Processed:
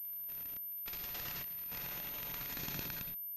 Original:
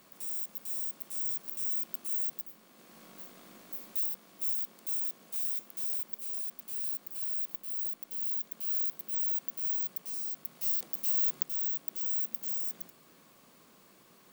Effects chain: every band turned upside down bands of 1 kHz; tilt shelf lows +4.5 dB, about 1.2 kHz; reverse; compression 6:1, threshold -45 dBFS, peak gain reduction 15 dB; reverse; transient shaper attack +12 dB, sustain -10 dB; saturation -17.5 dBFS, distortion -24 dB; time stretch by phase-locked vocoder 0.55×; full-wave rectifier; speed mistake 33 rpm record played at 78 rpm; reverse echo 158 ms -4.5 dB; reverberation RT60 0.45 s, pre-delay 64 ms, DRR 4.5 dB; random-step tremolo, depth 95%; class-D stage that switches slowly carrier 13 kHz; trim +5 dB

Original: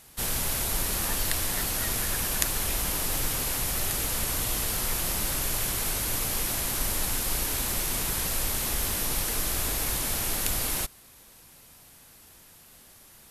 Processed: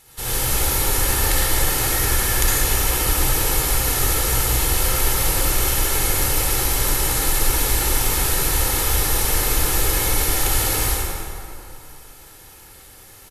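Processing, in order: comb 2.3 ms, depth 46%; reverberation RT60 2.7 s, pre-delay 52 ms, DRR -8 dB

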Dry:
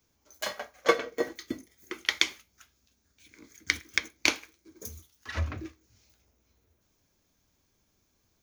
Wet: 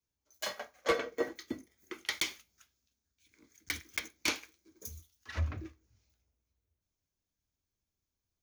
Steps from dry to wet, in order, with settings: 2.11–4.13 s: block-companded coder 5-bit; saturation -20.5 dBFS, distortion -6 dB; three bands expanded up and down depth 40%; trim -4 dB

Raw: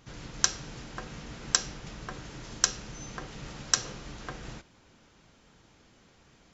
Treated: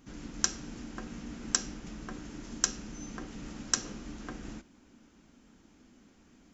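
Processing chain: ten-band graphic EQ 125 Hz -10 dB, 250 Hz +11 dB, 500 Hz -6 dB, 1 kHz -4 dB, 2 kHz -3 dB, 4 kHz -7 dB

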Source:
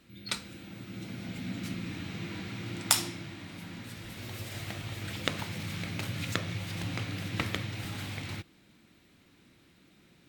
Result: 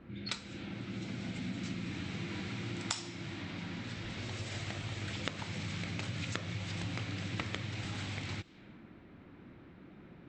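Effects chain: level-controlled noise filter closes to 1.2 kHz, open at -35.5 dBFS; compression 2.5:1, threshold -50 dBFS, peak gain reduction 20.5 dB; brick-wall FIR low-pass 8.2 kHz; trim +8.5 dB

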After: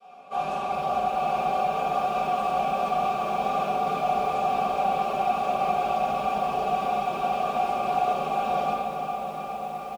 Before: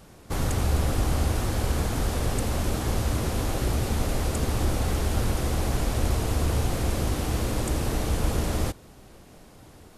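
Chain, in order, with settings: comb filter that takes the minimum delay 4.2 ms; high-pass 53 Hz 12 dB/octave; band-stop 1 kHz, Q 18; comb 5.1 ms, depth 93%; peak limiter -20 dBFS, peak gain reduction 7 dB; vowel filter a; on a send: filtered feedback delay 356 ms, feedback 81%, low-pass 4.2 kHz, level -10 dB; on the sum: simulated room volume 280 m³, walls mixed, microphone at 5.7 m; bit-crushed delay 413 ms, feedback 80%, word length 8-bit, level -11 dB

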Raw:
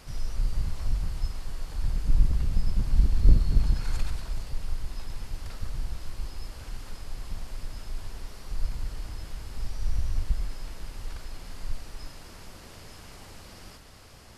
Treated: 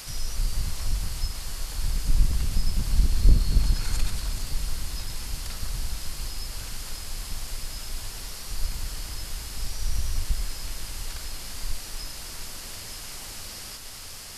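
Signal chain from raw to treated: treble shelf 3.9 kHz +10.5 dB; echo that smears into a reverb 703 ms, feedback 70%, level -14 dB; tape noise reduction on one side only encoder only

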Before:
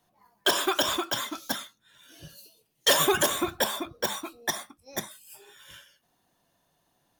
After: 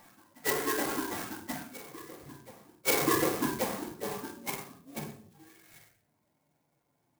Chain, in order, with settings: frequency axis rescaled in octaves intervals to 129%; formant shift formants -6 st; cabinet simulation 120–3000 Hz, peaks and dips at 270 Hz -3 dB, 830 Hz -4 dB, 1.3 kHz -4 dB; reverse echo 1132 ms -19.5 dB; simulated room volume 900 m³, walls furnished, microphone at 2.3 m; sampling jitter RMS 0.086 ms; trim +1 dB

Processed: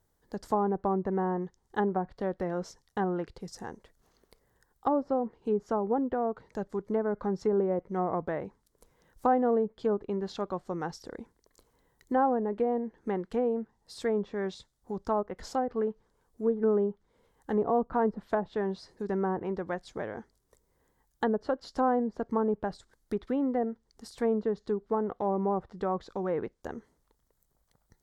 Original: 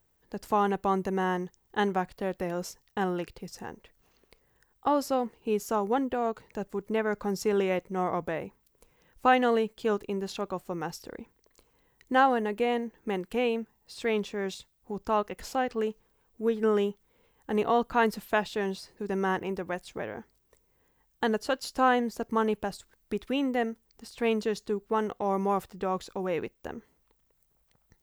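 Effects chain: low-pass that closes with the level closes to 790 Hz, closed at -23 dBFS; peaking EQ 2.6 kHz -12 dB 0.47 oct

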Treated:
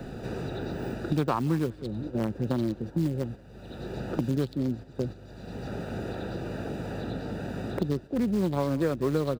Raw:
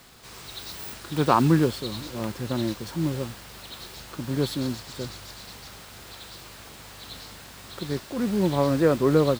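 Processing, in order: local Wiener filter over 41 samples; speakerphone echo 180 ms, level -22 dB; gate -39 dBFS, range -8 dB; three bands compressed up and down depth 100%; trim -1.5 dB

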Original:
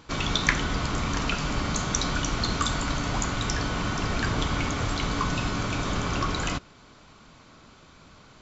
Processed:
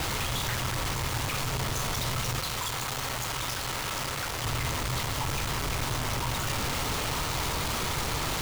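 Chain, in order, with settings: one-bit comparator; frequency shift -160 Hz; 2.39–4.44 s: bass shelf 280 Hz -8 dB; trim -2 dB

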